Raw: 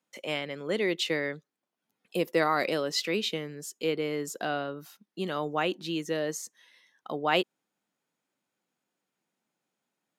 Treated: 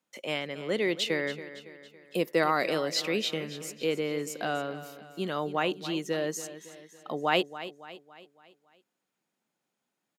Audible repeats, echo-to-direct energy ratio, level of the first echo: 4, -13.0 dB, -14.0 dB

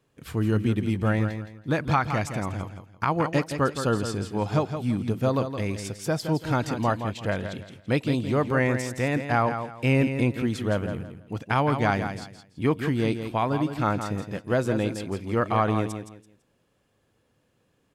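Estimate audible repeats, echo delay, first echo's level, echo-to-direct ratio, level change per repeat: 3, 167 ms, -8.5 dB, -8.0 dB, -11.5 dB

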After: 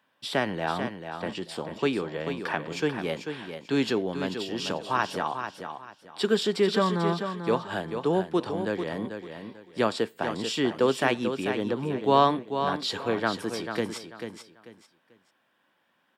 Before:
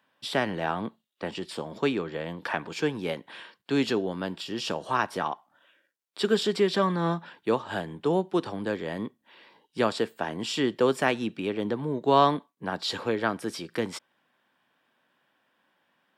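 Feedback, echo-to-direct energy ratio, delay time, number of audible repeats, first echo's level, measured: 26%, -7.5 dB, 441 ms, 3, -8.0 dB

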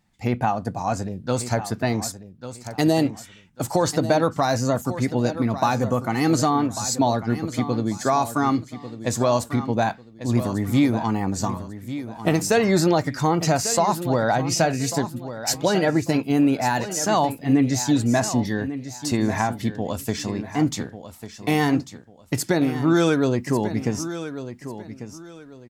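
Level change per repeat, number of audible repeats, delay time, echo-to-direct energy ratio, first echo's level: -11.5 dB, 2, 1145 ms, -11.5 dB, -12.0 dB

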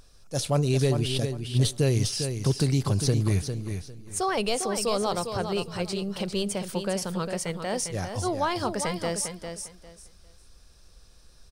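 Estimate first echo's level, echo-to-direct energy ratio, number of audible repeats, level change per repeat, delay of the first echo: -7.5 dB, -7.5 dB, 3, -13.0 dB, 402 ms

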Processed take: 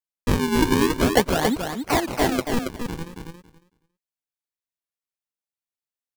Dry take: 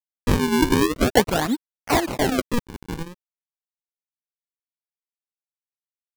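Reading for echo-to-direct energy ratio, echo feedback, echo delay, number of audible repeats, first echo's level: -5.5 dB, 15%, 277 ms, 2, -5.5 dB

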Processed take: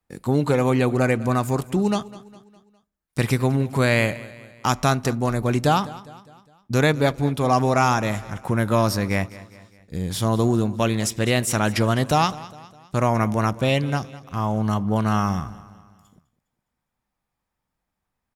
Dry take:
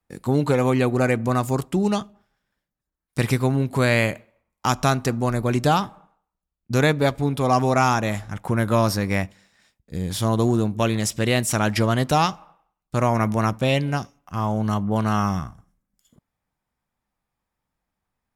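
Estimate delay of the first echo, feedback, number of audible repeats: 204 ms, 48%, 3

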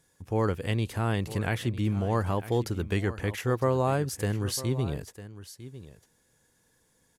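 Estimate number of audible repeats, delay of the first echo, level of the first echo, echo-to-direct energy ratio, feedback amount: 1, 952 ms, -15.0 dB, -15.0 dB, no regular repeats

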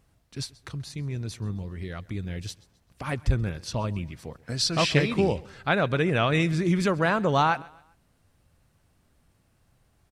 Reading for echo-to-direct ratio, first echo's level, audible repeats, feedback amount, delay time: -22.0 dB, -22.5 dB, 2, 38%, 132 ms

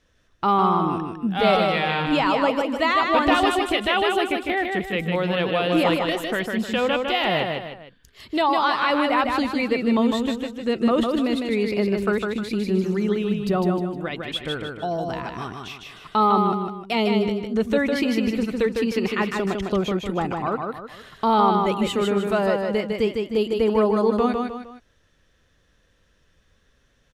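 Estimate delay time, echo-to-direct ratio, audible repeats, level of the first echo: 154 ms, -3.5 dB, 3, -4.0 dB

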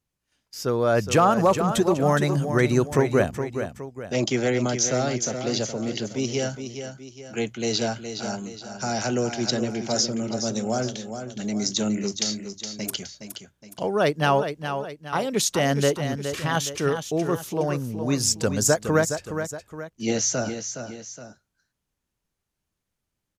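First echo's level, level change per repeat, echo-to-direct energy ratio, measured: -8.5 dB, -7.0 dB, -7.5 dB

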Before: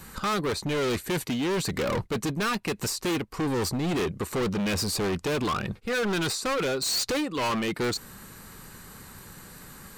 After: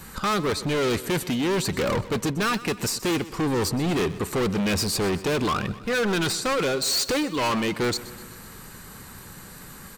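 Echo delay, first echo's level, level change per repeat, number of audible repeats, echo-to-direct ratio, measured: 126 ms, -17.0 dB, -4.5 dB, 4, -15.0 dB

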